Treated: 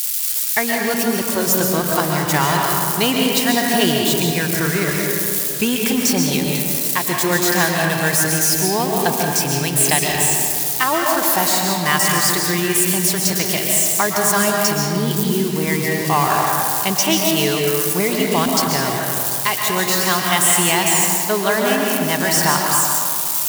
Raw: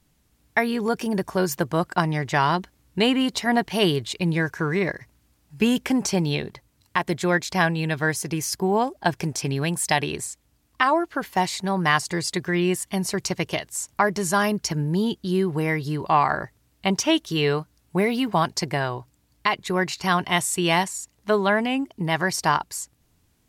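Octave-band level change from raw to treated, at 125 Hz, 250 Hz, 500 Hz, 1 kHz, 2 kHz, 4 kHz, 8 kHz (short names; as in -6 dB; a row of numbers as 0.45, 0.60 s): +4.0, +4.0, +4.5, +4.5, +5.5, +8.5, +14.5 dB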